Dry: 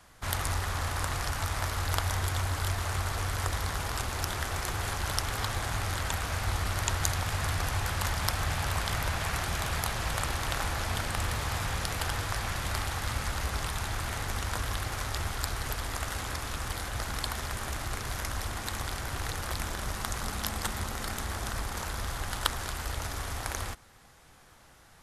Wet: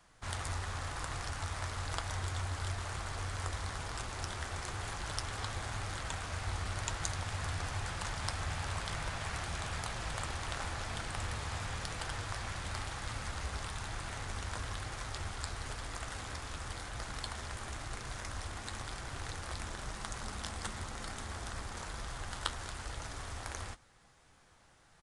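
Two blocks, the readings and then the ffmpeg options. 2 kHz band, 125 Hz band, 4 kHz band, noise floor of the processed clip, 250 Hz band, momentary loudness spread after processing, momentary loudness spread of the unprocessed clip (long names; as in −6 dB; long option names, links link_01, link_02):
−7.0 dB, −7.5 dB, −7.0 dB, −63 dBFS, −7.0 dB, 5 LU, 5 LU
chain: -af "flanger=delay=5.8:depth=6.1:regen=-61:speed=1:shape=sinusoidal,aresample=22050,aresample=44100,volume=-3dB"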